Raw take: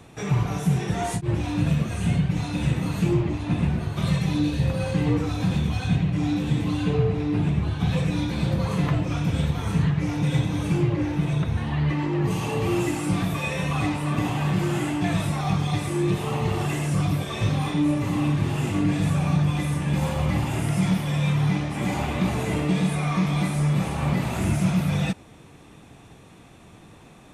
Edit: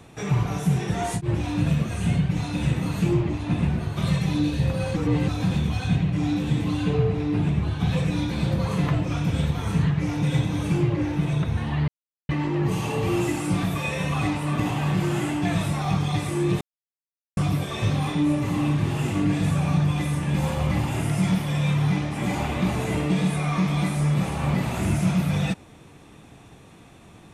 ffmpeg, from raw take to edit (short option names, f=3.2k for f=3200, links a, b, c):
-filter_complex "[0:a]asplit=6[a][b][c][d][e][f];[a]atrim=end=4.962[g];[b]atrim=start=4.958:end=5.282,asetpts=PTS-STARTPTS,areverse[h];[c]atrim=start=5.278:end=11.88,asetpts=PTS-STARTPTS,afade=t=out:st=6.598:d=0.004:c=hsin,apad=pad_dur=0.41[i];[d]atrim=start=11.88:end=16.2,asetpts=PTS-STARTPTS,afade=t=in:d=0.004:c=hsin,afade=t=out:st=4.316:d=0.004:c=hsin[j];[e]atrim=start=16.2:end=16.96,asetpts=PTS-STARTPTS,volume=0[k];[f]atrim=start=16.96,asetpts=PTS-STARTPTS,afade=t=in:d=0.004:c=hsin[l];[g][h]acrossfade=d=0.004:c1=hsin:c2=hsin[m];[i][j][k][l]concat=n=4:v=0:a=1[n];[m][n]acrossfade=d=0.004:c1=hsin:c2=hsin"